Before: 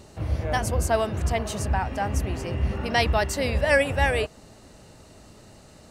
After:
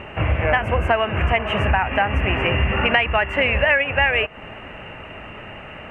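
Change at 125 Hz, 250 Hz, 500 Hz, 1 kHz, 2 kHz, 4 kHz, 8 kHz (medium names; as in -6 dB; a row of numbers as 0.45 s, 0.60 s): +3.5 dB, +3.5 dB, +3.5 dB, +6.0 dB, +9.0 dB, +7.0 dB, under -20 dB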